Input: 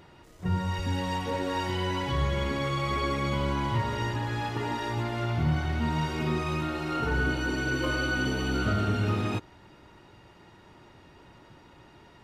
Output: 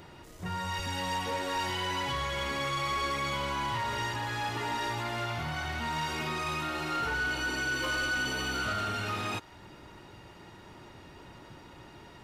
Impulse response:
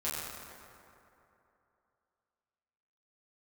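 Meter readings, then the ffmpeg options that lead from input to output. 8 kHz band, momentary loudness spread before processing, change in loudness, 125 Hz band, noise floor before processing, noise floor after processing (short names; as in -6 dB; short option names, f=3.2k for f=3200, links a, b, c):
+4.0 dB, 4 LU, -3.0 dB, -10.0 dB, -55 dBFS, -52 dBFS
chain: -filter_complex "[0:a]highshelf=f=6.2k:g=5,acrossover=split=640[a][b];[a]acompressor=threshold=-39dB:ratio=6[c];[c][b]amix=inputs=2:normalize=0,asoftclip=type=tanh:threshold=-29dB,volume=3dB"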